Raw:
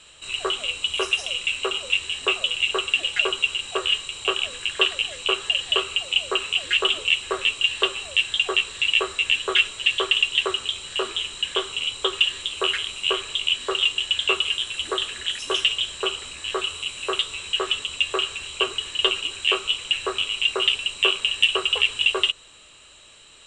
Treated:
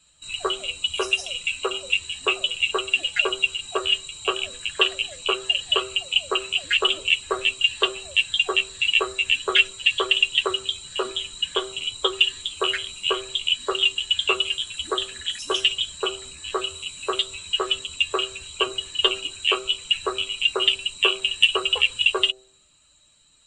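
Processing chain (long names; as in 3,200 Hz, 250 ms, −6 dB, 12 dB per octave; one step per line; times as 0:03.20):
spectral dynamics exaggerated over time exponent 1.5
hum removal 128.5 Hz, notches 6
level +3.5 dB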